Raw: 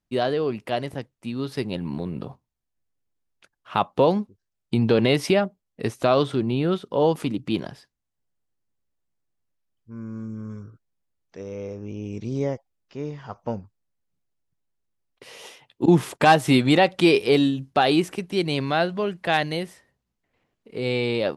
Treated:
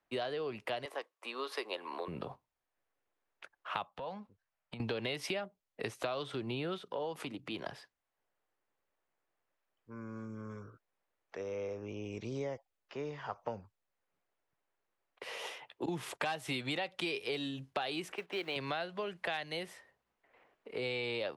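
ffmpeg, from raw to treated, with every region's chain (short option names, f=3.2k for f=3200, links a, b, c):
-filter_complex "[0:a]asettb=1/sr,asplit=3[a][b][c];[a]atrim=end=0.854[d];[b]atrim=start=0.85:end=2.08,asetpts=PTS-STARTPTS,afade=t=in:d=0.004:c=qsin,afade=t=out:st=1.226:d=0.004:c=qsin,highpass=f=370:w=0.5412,highpass=f=370:w=1.3066,equalizer=f=1.1k:w=7.9:g=12[e];[c]atrim=start=2.076[f];[d][e]acrossfade=d=0.004:c1=hsin:c2=qsin[g];[g][f]acrossfade=d=0.004:c1=qsin:c2=hsin,asettb=1/sr,asplit=3[h][i][j];[h]atrim=end=3.904[k];[i]atrim=start=3.9:end=4.8,asetpts=PTS-STARTPTS,afade=t=in:d=0.004:c=qsin,afade=t=out:st=0.896:d=0.004:c=qsin,lowpass=f=3.5k:p=1,equalizer=f=370:w=2.4:g=-14.5,acompressor=threshold=-32dB:ratio=16:attack=3.2:release=140:knee=1:detection=peak[l];[j]atrim=start=4.796[m];[k][l]acrossfade=d=0.004:c1=hsin:c2=qsin[n];[n][m]acrossfade=d=0.004:c1=qsin:c2=hsin,asettb=1/sr,asplit=3[o][p][q];[o]atrim=end=6.804[r];[p]atrim=start=6.8:end=7.66,asetpts=PTS-STARTPTS,afade=t=in:d=0.004:c=qsin,afade=t=out:st=0.856:d=0.004:c=qsin,acompressor=threshold=-40dB:ratio=1.5:attack=3.2:release=140:knee=1:detection=peak,bandreject=f=60:t=h:w=6,bandreject=f=120:t=h:w=6,bandreject=f=180:t=h:w=6[s];[q]atrim=start=7.656[t];[r][s]acrossfade=d=0.004:c1=hsin:c2=qsin[u];[u][t]acrossfade=d=0.004:c1=qsin:c2=hsin,asettb=1/sr,asplit=3[v][w][x];[v]atrim=end=18.124[y];[w]atrim=start=18.12:end=18.56,asetpts=PTS-STARTPTS,afade=t=in:d=0.004:c=qsin,afade=t=out:st=0.436:d=0.004:c=qsin,lowpass=9.1k,acrusher=bits=5:mode=log:mix=0:aa=0.000001,bass=f=250:g=-14,treble=f=4k:g=-13[z];[x]atrim=start=18.556[aa];[y][z]acrossfade=d=0.004:c1=hsin:c2=qsin[ab];[ab][aa]acrossfade=d=0.004:c1=qsin:c2=hsin,acrossover=split=170|3000[ac][ad][ae];[ad]acompressor=threshold=-60dB:ratio=1.5[af];[ac][af][ae]amix=inputs=3:normalize=0,acrossover=split=400 2600:gain=0.1 1 0.178[ag][ah][ai];[ag][ah][ai]amix=inputs=3:normalize=0,acompressor=threshold=-43dB:ratio=6,volume=9dB"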